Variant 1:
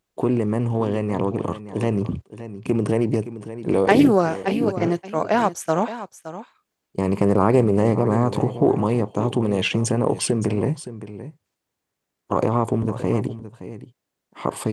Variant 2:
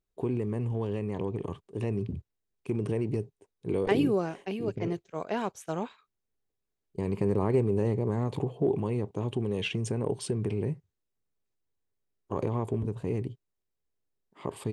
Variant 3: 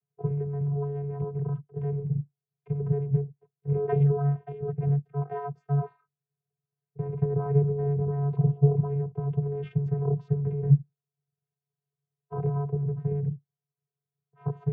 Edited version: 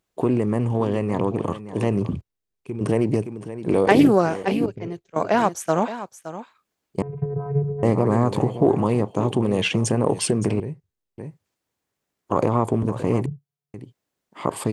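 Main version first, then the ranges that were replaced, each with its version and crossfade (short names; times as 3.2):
1
2.21–2.81 from 2
4.66–5.16 from 2
7.02–7.83 from 3
10.6–11.18 from 2
13.26–13.74 from 3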